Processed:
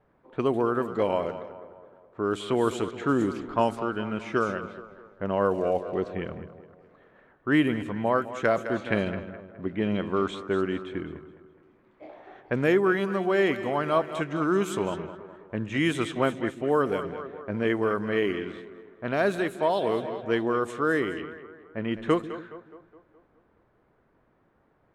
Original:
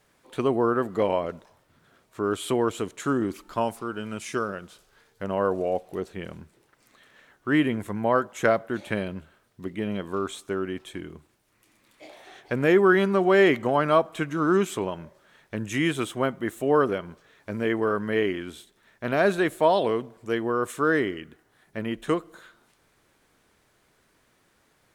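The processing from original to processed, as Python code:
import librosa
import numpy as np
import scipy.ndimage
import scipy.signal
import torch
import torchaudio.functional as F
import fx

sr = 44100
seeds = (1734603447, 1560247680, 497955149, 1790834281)

y = fx.echo_split(x, sr, split_hz=350.0, low_ms=142, high_ms=209, feedback_pct=52, wet_db=-12.5)
y = fx.env_lowpass(y, sr, base_hz=1100.0, full_db=-19.5)
y = fx.rider(y, sr, range_db=4, speed_s=0.5)
y = F.gain(torch.from_numpy(y), -1.5).numpy()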